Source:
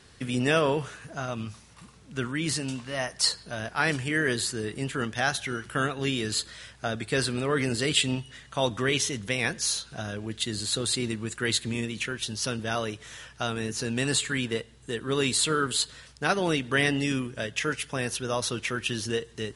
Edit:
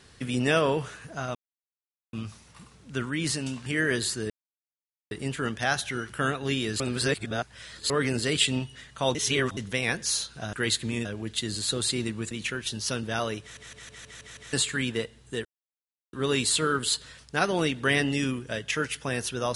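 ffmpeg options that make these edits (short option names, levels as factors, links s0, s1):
-filter_complex "[0:a]asplit=19[s0][s1][s2][s3][s4][s5][s6][s7][s8][s9][s10][s11][s12][s13][s14][s15][s16][s17][s18];[s0]atrim=end=1.35,asetpts=PTS-STARTPTS,afade=t=out:st=1.346:d=0.004:c=hsin,apad=pad_dur=0.78[s19];[s1]atrim=start=1.35:end=2.882,asetpts=PTS-STARTPTS,afade=t=in:d=0.004:c=hsin[s20];[s2]atrim=start=4.028:end=4.67,asetpts=PTS-STARTPTS,afade=t=out:st=0.638:d=0.004:c=hsin,apad=pad_dur=0.81[s21];[s3]atrim=start=4.67:end=6.362,asetpts=PTS-STARTPTS,afade=t=in:d=0.004:c=hsin[s22];[s4]atrim=start=6.358:end=7.462,asetpts=PTS-STARTPTS,areverse[s23];[s5]atrim=start=7.458:end=8.712[s24];[s6]atrim=start=8.708:end=9.132,asetpts=PTS-STARTPTS,areverse[s25];[s7]atrim=start=9.128:end=10.092[s26];[s8]atrim=start=11.348:end=11.872[s27];[s9]atrim=start=10.088:end=11.352[s28];[s10]atrim=start=11.868:end=13.132[s29];[s11]atrim=start=12.968:end=13.132[s30];[s12]atrim=start=12.968:end=13.132[s31];[s13]atrim=start=12.968:end=13.132[s32];[s14]atrim=start=12.968:end=13.132[s33];[s15]atrim=start=12.968:end=13.132[s34];[s16]atrim=start=12.968:end=13.132[s35];[s17]atrim=start=14.088:end=15.01,asetpts=PTS-STARTPTS,afade=t=out:st=0.918:d=0.004:c=hsin,apad=pad_dur=0.68[s36];[s18]atrim=start=15.01,asetpts=PTS-STARTPTS,afade=t=in:d=0.004:c=hsin[s37];[s19][s20]concat=n=2:v=0:a=1[s38];[s21][s22]concat=n=2:v=0:a=1[s39];[s38][s39]acrossfade=d=0.004:c1=hsin:c2=hsin[s40];[s40][s23]acrossfade=d=0.004:c1=hsin:c2=hsin[s41];[s41][s24]acrossfade=d=0.004:c1=hsin:c2=hsin[s42];[s42][s25]acrossfade=d=0.004:c1=hsin:c2=hsin[s43];[s43][s26]acrossfade=d=0.004:c1=hsin:c2=hsin[s44];[s44][s27]acrossfade=d=0.004:c1=hsin:c2=hsin[s45];[s45][s28]acrossfade=d=0.004:c1=hsin:c2=hsin[s46];[s46][s29]acrossfade=d=0.004:c1=hsin:c2=hsin[s47];[s47][s30]acrossfade=d=0.004:c1=hsin:c2=hsin[s48];[s48][s31]acrossfade=d=0.004:c1=hsin:c2=hsin[s49];[s49][s32]acrossfade=d=0.004:c1=hsin:c2=hsin[s50];[s50][s33]acrossfade=d=0.004:c1=hsin:c2=hsin[s51];[s51][s34]acrossfade=d=0.004:c1=hsin:c2=hsin[s52];[s52][s35]acrossfade=d=0.004:c1=hsin:c2=hsin[s53];[s36][s37]concat=n=2:v=0:a=1[s54];[s53][s54]acrossfade=d=0.004:c1=hsin:c2=hsin"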